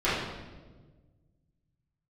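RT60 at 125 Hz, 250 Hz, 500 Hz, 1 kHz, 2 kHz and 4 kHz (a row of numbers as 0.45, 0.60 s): 2.5, 1.9, 1.6, 1.1, 1.0, 0.95 s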